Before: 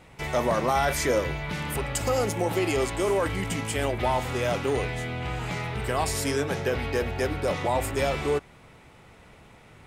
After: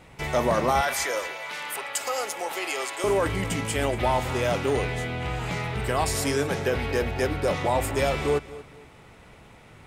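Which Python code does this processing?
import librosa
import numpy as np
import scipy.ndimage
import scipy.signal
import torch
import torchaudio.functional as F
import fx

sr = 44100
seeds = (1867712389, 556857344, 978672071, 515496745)

y = fx.highpass(x, sr, hz=740.0, slope=12, at=(0.81, 3.04))
y = fx.echo_feedback(y, sr, ms=232, feedback_pct=29, wet_db=-17)
y = y * 10.0 ** (1.5 / 20.0)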